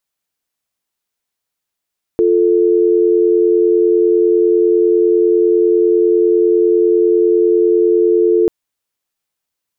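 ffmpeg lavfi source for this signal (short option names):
-f lavfi -i "aevalsrc='0.266*(sin(2*PI*350*t)+sin(2*PI*440*t))':d=6.29:s=44100"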